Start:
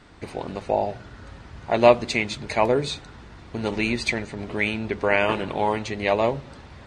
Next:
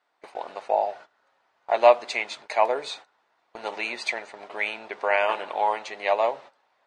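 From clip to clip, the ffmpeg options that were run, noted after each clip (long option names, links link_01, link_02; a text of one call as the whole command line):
ffmpeg -i in.wav -af "highpass=frequency=710:width_type=q:width=1.7,highshelf=frequency=6300:gain=-5,agate=range=-18dB:threshold=-39dB:ratio=16:detection=peak,volume=-3dB" out.wav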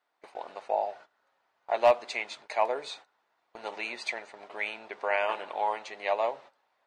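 ffmpeg -i in.wav -af "asoftclip=type=hard:threshold=-7.5dB,volume=-5.5dB" out.wav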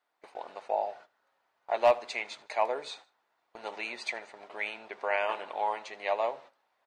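ffmpeg -i in.wav -af "aecho=1:1:77|154:0.0794|0.0278,volume=-1.5dB" out.wav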